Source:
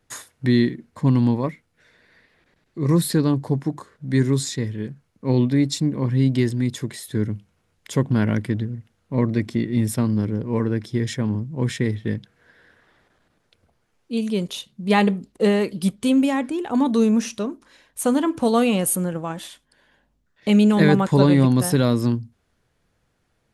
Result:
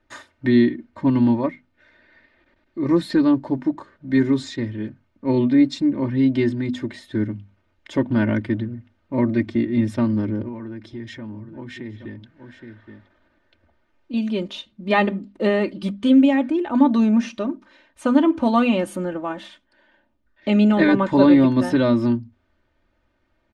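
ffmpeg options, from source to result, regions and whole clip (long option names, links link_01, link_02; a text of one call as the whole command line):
ffmpeg -i in.wav -filter_complex "[0:a]asettb=1/sr,asplit=3[link_01][link_02][link_03];[link_01]atrim=end=10.484[link_04];[link_02]atrim=start=10.48:end=14.14,asetpts=PTS-STARTPTS,afade=type=in:duration=0.004:curve=qsin,afade=type=out:start_time=3.656:duration=0.004:curve=qsin,aecho=1:1:820:0.119,atrim=end_sample=161406,acompressor=threshold=-33dB:ratio=3:attack=3.2:release=140:knee=1:detection=peak[link_05];[link_03]atrim=start=14.136[link_06];[link_04][link_05]acrossfade=duration=0.004:curve1=hsin:curve2=qsin[link_07];[link_07][link_06]acrossfade=duration=0.004:curve1=qsin:curve2=hsin,lowpass=3100,bandreject=frequency=50:width_type=h:width=6,bandreject=frequency=100:width_type=h:width=6,bandreject=frequency=150:width_type=h:width=6,bandreject=frequency=200:width_type=h:width=6,bandreject=frequency=250:width_type=h:width=6,aecho=1:1:3.3:0.81" out.wav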